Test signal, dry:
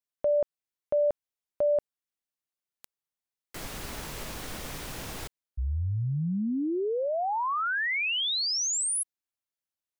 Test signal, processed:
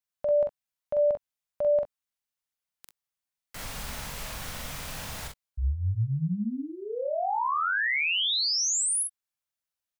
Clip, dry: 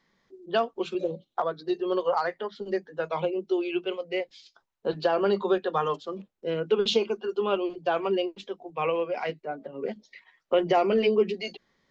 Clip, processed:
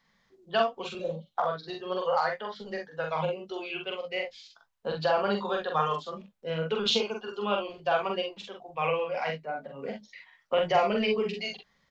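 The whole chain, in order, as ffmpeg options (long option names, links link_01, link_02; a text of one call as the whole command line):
ffmpeg -i in.wav -filter_complex "[0:a]equalizer=frequency=350:width_type=o:width=0.64:gain=-14.5,asplit=2[link_01][link_02];[link_02]aecho=0:1:44|63:0.708|0.251[link_03];[link_01][link_03]amix=inputs=2:normalize=0" out.wav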